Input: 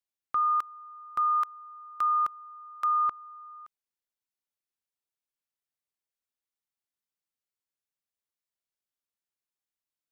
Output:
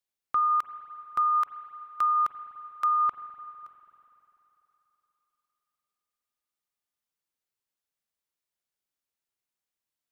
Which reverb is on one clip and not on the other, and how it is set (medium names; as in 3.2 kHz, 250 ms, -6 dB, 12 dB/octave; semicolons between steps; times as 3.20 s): spring tank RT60 3.6 s, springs 41/49 ms, chirp 80 ms, DRR 10.5 dB; trim +2 dB